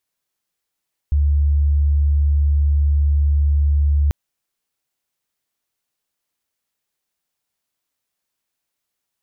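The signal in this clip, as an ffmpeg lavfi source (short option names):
-f lavfi -i "aevalsrc='0.237*sin(2*PI*72.5*t)':d=2.99:s=44100"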